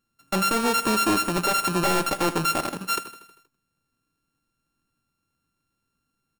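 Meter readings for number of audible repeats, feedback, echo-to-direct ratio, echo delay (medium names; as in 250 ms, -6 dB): 5, 59%, -12.5 dB, 79 ms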